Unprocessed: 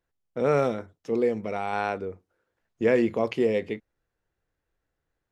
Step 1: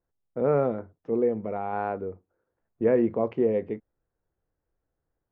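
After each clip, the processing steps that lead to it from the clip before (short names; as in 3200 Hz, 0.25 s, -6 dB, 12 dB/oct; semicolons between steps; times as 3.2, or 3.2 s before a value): LPF 1100 Hz 12 dB/oct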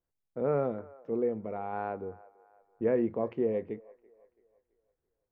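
band-limited delay 0.333 s, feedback 40%, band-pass 1000 Hz, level -20 dB; gain -5.5 dB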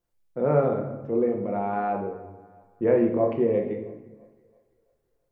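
shoebox room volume 310 m³, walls mixed, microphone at 0.86 m; gain +5 dB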